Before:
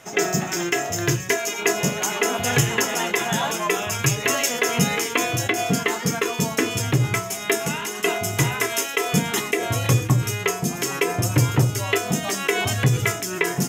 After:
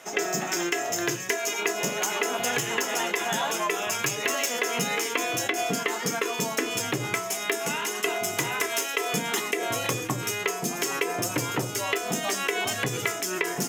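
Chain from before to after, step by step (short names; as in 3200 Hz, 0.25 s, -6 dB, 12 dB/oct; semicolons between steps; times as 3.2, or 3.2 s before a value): tracing distortion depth 0.026 ms; HPF 270 Hz 12 dB/oct; compressor, threshold -23 dBFS, peak gain reduction 7.5 dB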